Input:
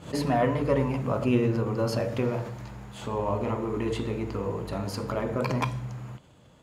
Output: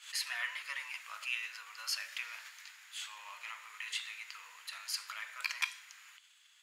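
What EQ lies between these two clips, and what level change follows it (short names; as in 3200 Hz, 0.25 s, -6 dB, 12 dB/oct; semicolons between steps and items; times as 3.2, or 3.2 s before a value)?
inverse Chebyshev high-pass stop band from 300 Hz, stop band 80 dB; +3.0 dB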